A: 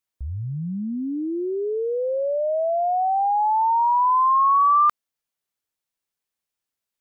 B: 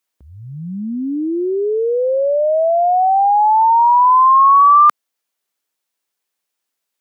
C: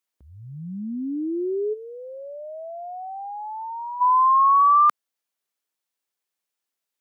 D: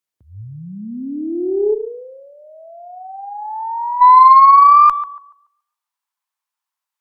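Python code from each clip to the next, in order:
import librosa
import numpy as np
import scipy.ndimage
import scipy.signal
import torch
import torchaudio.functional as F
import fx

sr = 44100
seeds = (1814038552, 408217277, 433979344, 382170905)

y1 = scipy.signal.sosfilt(scipy.signal.butter(2, 240.0, 'highpass', fs=sr, output='sos'), x)
y1 = F.gain(torch.from_numpy(y1), 8.0).numpy()
y2 = fx.spec_box(y1, sr, start_s=1.73, length_s=2.28, low_hz=420.0, high_hz=1300.0, gain_db=-14)
y2 = F.gain(torch.from_numpy(y2), -7.0).numpy()
y3 = fx.echo_tape(y2, sr, ms=140, feedback_pct=33, wet_db=-10, lp_hz=1400.0, drive_db=9.0, wow_cents=29)
y3 = fx.filter_sweep_highpass(y3, sr, from_hz=100.0, to_hz=980.0, start_s=0.74, end_s=2.35, q=4.1)
y3 = fx.cheby_harmonics(y3, sr, harmonics=(4,), levels_db=(-33,), full_scale_db=0.5)
y3 = F.gain(torch.from_numpy(y3), -1.5).numpy()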